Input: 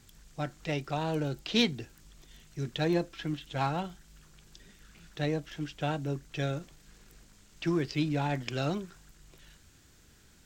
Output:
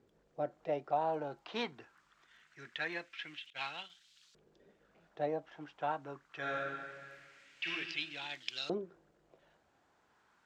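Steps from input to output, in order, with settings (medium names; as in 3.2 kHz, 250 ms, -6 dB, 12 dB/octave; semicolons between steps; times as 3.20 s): 3.50–3.90 s: expander -32 dBFS; 6.39–7.70 s: reverb throw, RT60 1.9 s, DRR -4.5 dB; LFO band-pass saw up 0.23 Hz 440–4100 Hz; trim +4 dB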